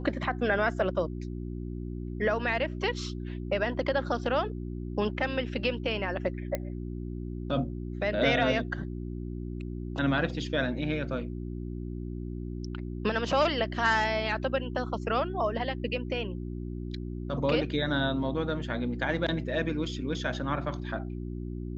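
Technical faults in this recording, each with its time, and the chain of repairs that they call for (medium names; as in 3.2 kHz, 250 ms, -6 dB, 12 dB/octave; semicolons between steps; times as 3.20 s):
hum 60 Hz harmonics 6 -36 dBFS
6.55 s: pop -16 dBFS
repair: de-click; de-hum 60 Hz, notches 6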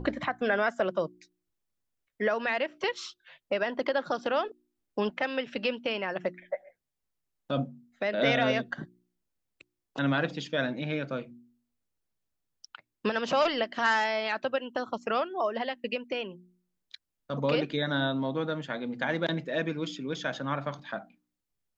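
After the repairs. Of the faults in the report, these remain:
nothing left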